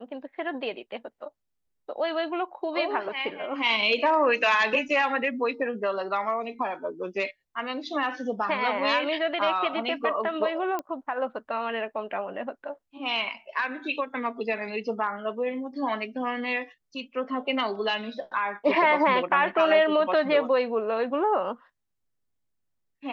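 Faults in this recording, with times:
10.79 s: pop -18 dBFS

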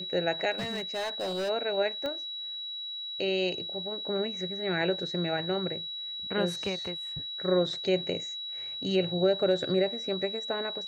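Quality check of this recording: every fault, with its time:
whine 3.9 kHz -35 dBFS
0.51–1.50 s: clipped -28.5 dBFS
2.06 s: pop -22 dBFS

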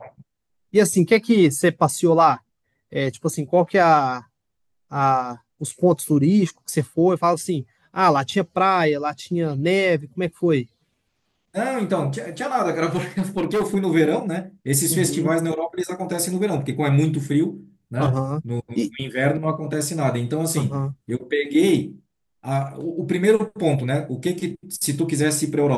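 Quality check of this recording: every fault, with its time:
12.95–13.76 s: clipped -17 dBFS

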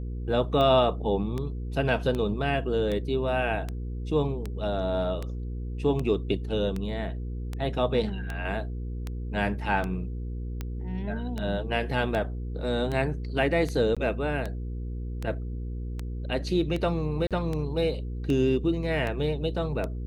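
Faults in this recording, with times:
hum 60 Hz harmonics 8 -33 dBFS
tick 78 rpm -19 dBFS
13.95–13.97 s: dropout 16 ms
17.27–17.31 s: dropout 37 ms

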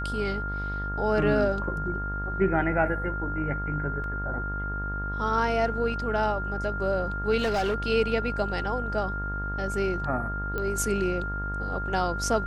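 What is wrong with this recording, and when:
buzz 50 Hz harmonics 37 -33 dBFS
whine 1.4 kHz -32 dBFS
4.04 s: dropout 2.1 ms
7.38–7.75 s: clipped -22 dBFS
10.58 s: pop -18 dBFS

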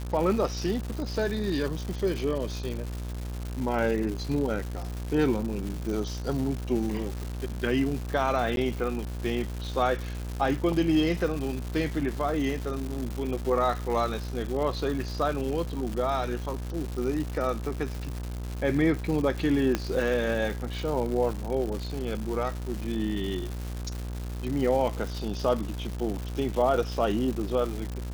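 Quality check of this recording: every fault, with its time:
buzz 60 Hz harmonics 29 -34 dBFS
crackle 300 per s -32 dBFS
8.56–8.57 s: dropout 12 ms
19.75 s: pop -11 dBFS

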